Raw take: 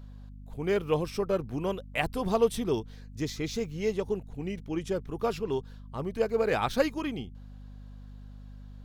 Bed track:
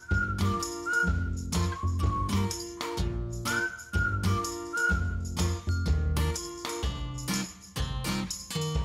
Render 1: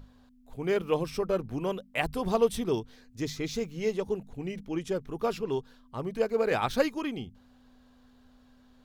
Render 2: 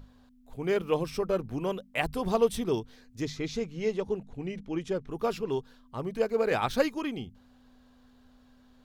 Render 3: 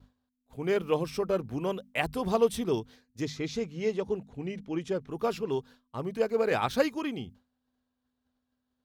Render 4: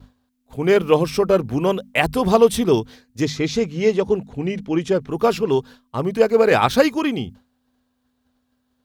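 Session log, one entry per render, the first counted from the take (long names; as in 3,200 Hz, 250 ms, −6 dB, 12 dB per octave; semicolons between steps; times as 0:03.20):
mains-hum notches 50/100/150/200 Hz
0:03.25–0:05.11: high-frequency loss of the air 51 metres
downward expander −45 dBFS; high-pass filter 56 Hz
level +12 dB; brickwall limiter −2 dBFS, peak gain reduction 2.5 dB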